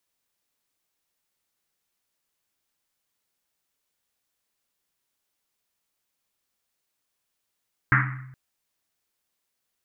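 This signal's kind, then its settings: Risset drum length 0.42 s, pitch 130 Hz, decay 1.05 s, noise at 1600 Hz, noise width 930 Hz, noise 50%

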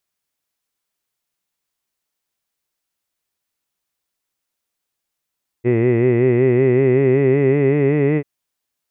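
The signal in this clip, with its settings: formant-synthesis vowel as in hid, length 2.59 s, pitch 117 Hz, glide +4 st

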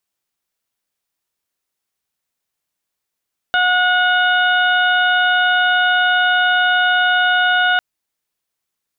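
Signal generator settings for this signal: steady additive tone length 4.25 s, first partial 727 Hz, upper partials 4.5/-14/-4/-7 dB, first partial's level -18 dB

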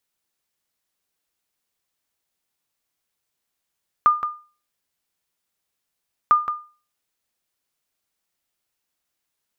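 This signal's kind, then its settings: sonar ping 1210 Hz, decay 0.36 s, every 2.25 s, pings 2, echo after 0.17 s, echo -10 dB -7.5 dBFS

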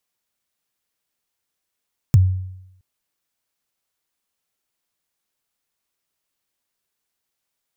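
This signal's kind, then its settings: kick drum length 0.67 s, from 150 Hz, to 93 Hz, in 27 ms, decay 0.83 s, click on, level -6 dB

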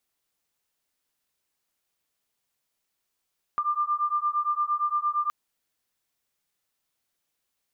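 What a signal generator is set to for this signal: beating tones 1190 Hz, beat 8.7 Hz, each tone -26.5 dBFS 1.72 s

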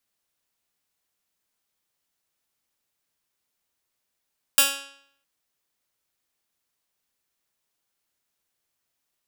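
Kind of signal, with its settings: plucked string C#4, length 0.66 s, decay 0.67 s, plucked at 0.13, bright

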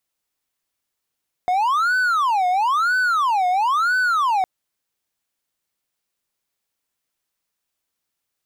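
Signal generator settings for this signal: siren wail 720–1510 Hz 1/s triangle -14 dBFS 2.96 s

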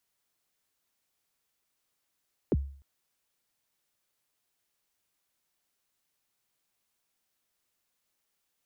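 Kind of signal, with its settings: kick drum length 0.30 s, from 500 Hz, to 69 Hz, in 35 ms, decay 0.49 s, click off, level -19.5 dB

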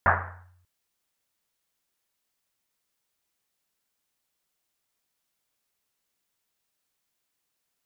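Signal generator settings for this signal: Risset drum length 0.59 s, pitch 90 Hz, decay 0.95 s, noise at 1200 Hz, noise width 1100 Hz, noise 70%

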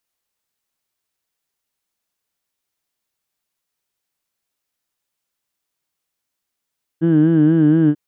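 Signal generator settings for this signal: formant vowel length 0.94 s, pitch 160 Hz, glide -0.5 st, vibrato 4.2 Hz, F1 300 Hz, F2 1600 Hz, F3 3000 Hz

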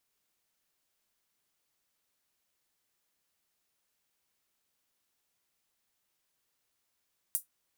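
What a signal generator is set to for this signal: closed hi-hat, high-pass 9600 Hz, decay 0.13 s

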